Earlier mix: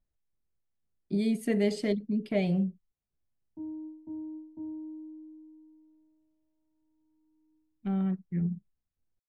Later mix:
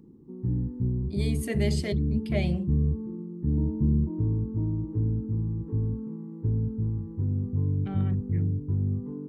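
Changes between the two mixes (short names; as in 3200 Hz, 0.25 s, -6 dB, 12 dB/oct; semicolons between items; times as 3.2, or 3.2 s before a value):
first sound: unmuted; second sound +6.0 dB; master: add tilt +2 dB/oct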